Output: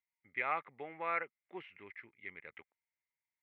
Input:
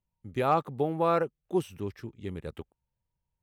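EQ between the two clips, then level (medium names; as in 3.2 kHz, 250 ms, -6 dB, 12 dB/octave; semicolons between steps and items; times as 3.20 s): band-pass filter 2.1 kHz, Q 12; distance through air 410 m; +17.5 dB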